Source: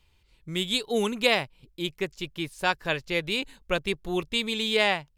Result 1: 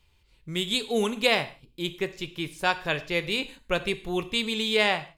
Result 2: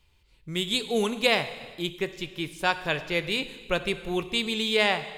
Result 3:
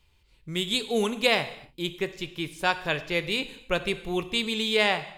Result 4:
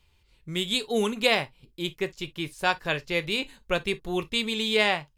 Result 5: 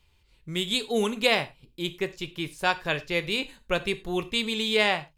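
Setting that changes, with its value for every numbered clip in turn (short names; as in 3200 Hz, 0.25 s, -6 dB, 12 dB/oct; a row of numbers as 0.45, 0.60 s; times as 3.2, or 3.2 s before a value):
non-linear reverb, gate: 190, 500, 310, 80, 130 ms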